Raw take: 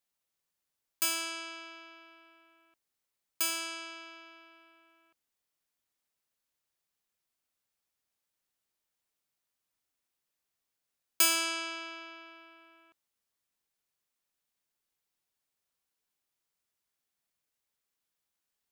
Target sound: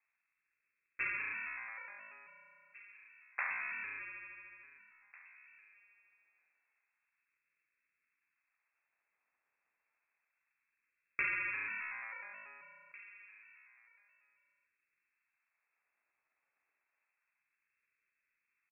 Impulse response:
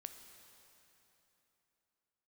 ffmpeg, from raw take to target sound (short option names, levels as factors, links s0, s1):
-filter_complex "[0:a]acompressor=threshold=0.00891:ratio=2,asetrate=57191,aresample=44100,atempo=0.771105,acrusher=samples=18:mix=1:aa=0.000001:lfo=1:lforange=10.8:lforate=0.29,asplit=2[s0][s1];[s1]adelay=20,volume=0.251[s2];[s0][s2]amix=inputs=2:normalize=0,asplit=2[s3][s4];[s4]adelay=1749,volume=0.126,highshelf=f=4000:g=-39.4[s5];[s3][s5]amix=inputs=2:normalize=0,asplit=2[s6][s7];[1:a]atrim=start_sample=2205[s8];[s7][s8]afir=irnorm=-1:irlink=0,volume=0.531[s9];[s6][s9]amix=inputs=2:normalize=0,lowpass=f=2300:t=q:w=0.5098,lowpass=f=2300:t=q:w=0.6013,lowpass=f=2300:t=q:w=0.9,lowpass=f=2300:t=q:w=2.563,afreqshift=-2700"